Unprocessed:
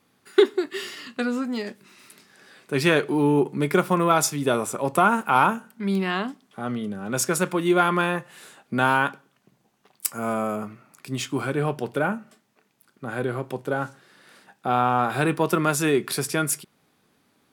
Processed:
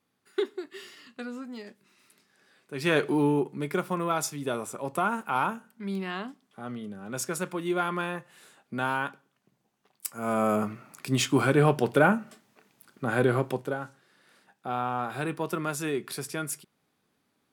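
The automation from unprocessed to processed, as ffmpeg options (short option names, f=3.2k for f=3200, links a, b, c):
-af "volume=11dB,afade=t=in:st=2.78:d=0.27:silence=0.281838,afade=t=out:st=3.05:d=0.44:silence=0.421697,afade=t=in:st=10.15:d=0.42:silence=0.251189,afade=t=out:st=13.39:d=0.4:silence=0.237137"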